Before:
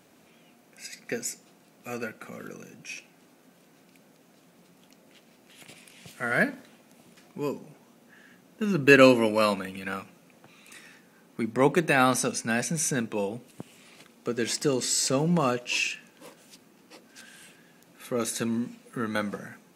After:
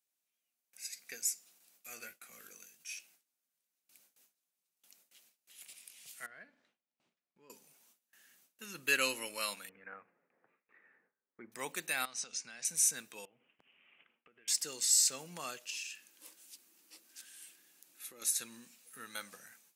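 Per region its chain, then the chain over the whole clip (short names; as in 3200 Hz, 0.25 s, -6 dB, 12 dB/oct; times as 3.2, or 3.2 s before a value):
1.95–2.96 expander -44 dBFS + doubler 18 ms -7 dB + mismatched tape noise reduction encoder only
6.26–7.5 tape spacing loss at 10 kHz 33 dB + compressor 1.5:1, threshold -53 dBFS
9.69–11.52 Chebyshev low-pass 1900 Hz, order 4 + bell 430 Hz +8 dB 0.66 oct
12.05–12.65 LPF 6500 Hz 24 dB/oct + compressor 10:1, threshold -30 dBFS
13.25–14.48 steep low-pass 3100 Hz 96 dB/oct + compressor 10:1, threshold -41 dBFS
15.7–18.22 compressor 3:1, threshold -35 dBFS + bell 320 Hz +11 dB 0.38 oct
whole clip: gate with hold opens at -46 dBFS; pre-emphasis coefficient 0.97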